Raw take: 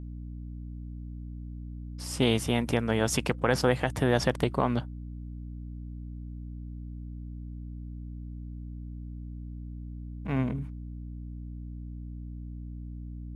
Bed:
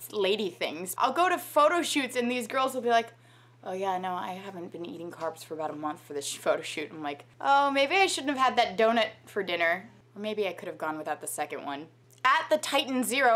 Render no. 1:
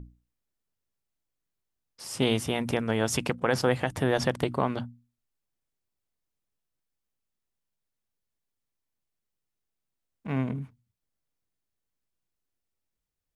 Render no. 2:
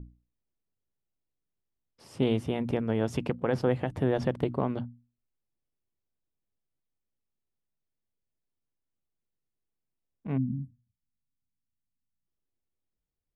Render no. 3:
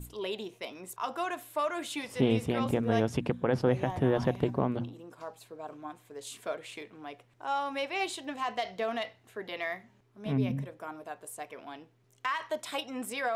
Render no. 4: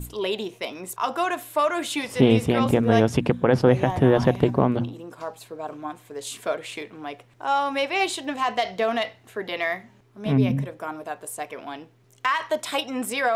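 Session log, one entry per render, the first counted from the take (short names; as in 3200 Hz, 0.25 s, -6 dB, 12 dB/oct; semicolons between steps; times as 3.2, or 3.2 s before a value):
notches 60/120/180/240/300 Hz
10.37–12.27 spectral delete 300–7500 Hz; EQ curve 380 Hz 0 dB, 1500 Hz -9 dB, 2900 Hz -9 dB, 7000 Hz -18 dB
add bed -9 dB
gain +9 dB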